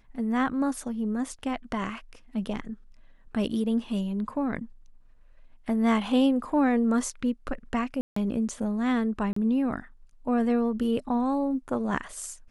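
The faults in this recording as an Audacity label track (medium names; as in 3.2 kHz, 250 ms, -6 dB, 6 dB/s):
8.010000	8.160000	dropout 154 ms
9.330000	9.360000	dropout 34 ms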